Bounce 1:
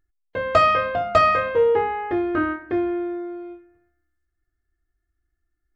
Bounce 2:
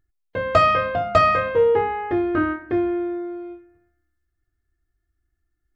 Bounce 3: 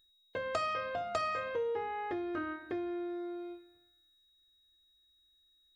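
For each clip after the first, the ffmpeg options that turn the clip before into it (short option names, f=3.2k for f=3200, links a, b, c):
-af "equalizer=f=120:w=0.67:g=5.5"
-af "acompressor=threshold=-28dB:ratio=3,bass=f=250:g=-8,treble=f=4k:g=12,aeval=exprs='val(0)+0.001*sin(2*PI*3800*n/s)':c=same,volume=-7dB"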